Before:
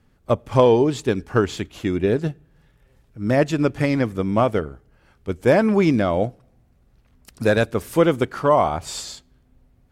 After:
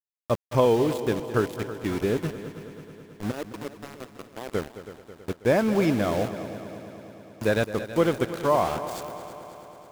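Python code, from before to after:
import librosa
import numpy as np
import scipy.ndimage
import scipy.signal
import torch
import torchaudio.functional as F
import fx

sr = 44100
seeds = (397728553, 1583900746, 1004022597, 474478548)

p1 = fx.ladder_bandpass(x, sr, hz=430.0, resonance_pct=40, at=(3.3, 4.47), fade=0.02)
p2 = np.where(np.abs(p1) >= 10.0 ** (-25.5 / 20.0), p1, 0.0)
p3 = p2 + fx.echo_heads(p2, sr, ms=108, heads='second and third', feedback_pct=64, wet_db=-14, dry=0)
y = p3 * 10.0 ** (-5.5 / 20.0)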